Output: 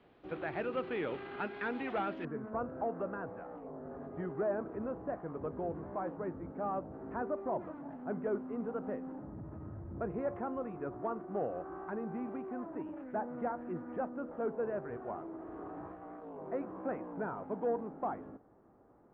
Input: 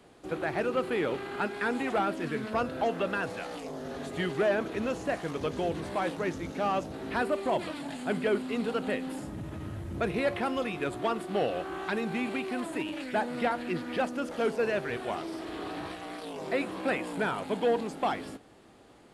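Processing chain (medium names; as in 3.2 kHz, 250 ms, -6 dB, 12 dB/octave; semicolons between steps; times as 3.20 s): low-pass 3.4 kHz 24 dB/octave, from 2.25 s 1.3 kHz; trim -7 dB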